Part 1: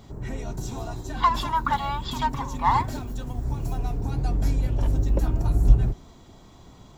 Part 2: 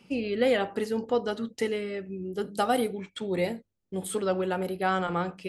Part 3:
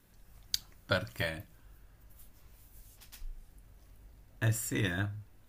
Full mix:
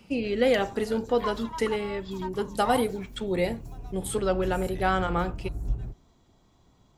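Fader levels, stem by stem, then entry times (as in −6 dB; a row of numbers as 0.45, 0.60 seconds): −13.0, +1.5, −13.0 decibels; 0.00, 0.00, 0.00 seconds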